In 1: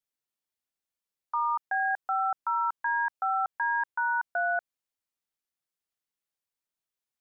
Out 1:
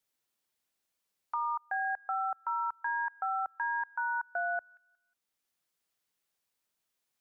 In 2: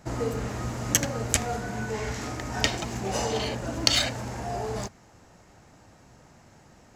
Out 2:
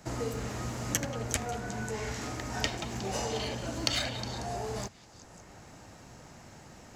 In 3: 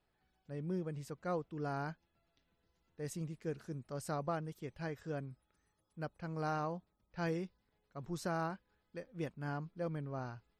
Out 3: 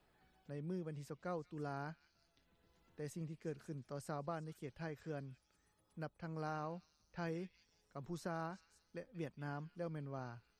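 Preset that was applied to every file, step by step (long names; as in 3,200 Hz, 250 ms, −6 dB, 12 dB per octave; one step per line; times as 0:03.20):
echo through a band-pass that steps 181 ms, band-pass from 3,100 Hz, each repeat 0.7 octaves, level −11.5 dB
multiband upward and downward compressor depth 40%
level −5 dB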